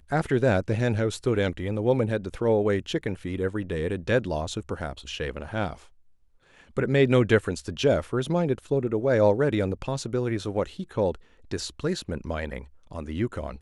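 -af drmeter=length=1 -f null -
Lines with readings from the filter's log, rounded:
Channel 1: DR: 10.5
Overall DR: 10.5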